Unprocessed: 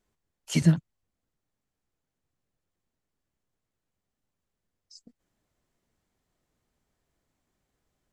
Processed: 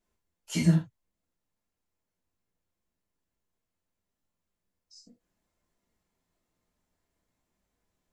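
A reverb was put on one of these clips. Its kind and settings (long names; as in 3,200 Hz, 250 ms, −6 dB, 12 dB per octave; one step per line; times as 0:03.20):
reverb whose tail is shaped and stops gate 120 ms falling, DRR −4 dB
level −7 dB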